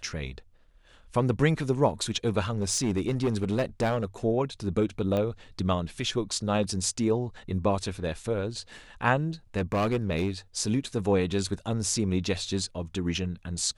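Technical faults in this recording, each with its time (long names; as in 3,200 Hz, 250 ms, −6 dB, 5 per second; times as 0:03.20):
0:02.50–0:04.05: clipping −21 dBFS
0:05.17: click −18 dBFS
0:09.56–0:10.30: clipping −21.5 dBFS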